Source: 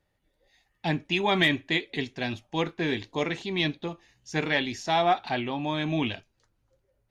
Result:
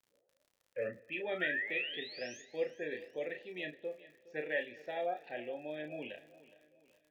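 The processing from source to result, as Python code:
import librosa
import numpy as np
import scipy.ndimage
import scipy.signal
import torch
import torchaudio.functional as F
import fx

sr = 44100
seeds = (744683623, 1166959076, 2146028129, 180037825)

y = fx.tape_start_head(x, sr, length_s=1.2)
y = fx.spec_gate(y, sr, threshold_db=-25, keep='strong')
y = fx.high_shelf(y, sr, hz=4000.0, db=-10.0)
y = fx.spec_paint(y, sr, seeds[0], shape='rise', start_s=1.31, length_s=1.11, low_hz=1200.0, high_hz=6900.0, level_db=-29.0)
y = fx.vowel_filter(y, sr, vowel='e')
y = fx.dmg_crackle(y, sr, seeds[1], per_s=55.0, level_db=-55.0)
y = fx.doubler(y, sr, ms=33.0, db=-6.5)
y = fx.echo_feedback(y, sr, ms=415, feedback_pct=43, wet_db=-18.5)
y = fx.rev_plate(y, sr, seeds[2], rt60_s=2.2, hf_ratio=0.85, predelay_ms=0, drr_db=20.0)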